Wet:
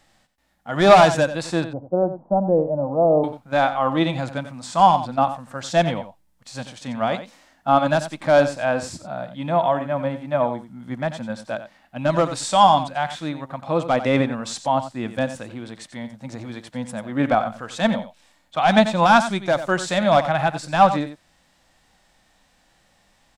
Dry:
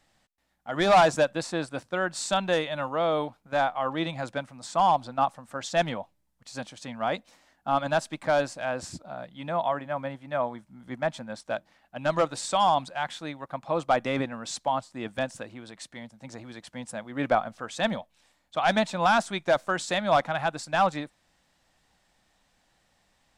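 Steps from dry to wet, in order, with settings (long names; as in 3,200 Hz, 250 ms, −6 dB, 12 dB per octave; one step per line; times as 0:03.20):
harmonic and percussive parts rebalanced harmonic +9 dB
0:01.64–0:03.24: Butterworth low-pass 820 Hz 36 dB per octave
single-tap delay 90 ms −12 dB
level +1.5 dB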